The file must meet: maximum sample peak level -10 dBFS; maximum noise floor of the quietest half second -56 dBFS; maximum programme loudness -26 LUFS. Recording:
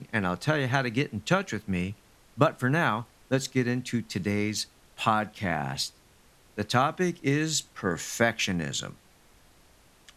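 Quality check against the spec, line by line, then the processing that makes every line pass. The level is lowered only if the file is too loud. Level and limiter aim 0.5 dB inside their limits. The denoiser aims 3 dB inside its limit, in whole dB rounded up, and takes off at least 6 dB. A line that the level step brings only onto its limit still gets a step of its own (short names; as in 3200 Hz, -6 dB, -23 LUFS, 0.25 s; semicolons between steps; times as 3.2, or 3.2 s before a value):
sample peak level -6.0 dBFS: fail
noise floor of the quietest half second -59 dBFS: OK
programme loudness -28.0 LUFS: OK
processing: limiter -10.5 dBFS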